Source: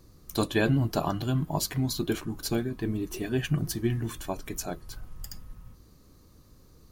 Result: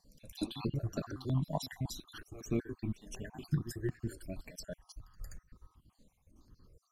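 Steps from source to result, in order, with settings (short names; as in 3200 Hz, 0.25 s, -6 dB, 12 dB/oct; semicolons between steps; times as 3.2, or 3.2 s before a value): random spectral dropouts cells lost 58%; LPF 12000 Hz 12 dB/oct; high shelf 9400 Hz -7.5 dB; pre-echo 0.178 s -15.5 dB; step phaser 5.4 Hz 360–3200 Hz; gain -3 dB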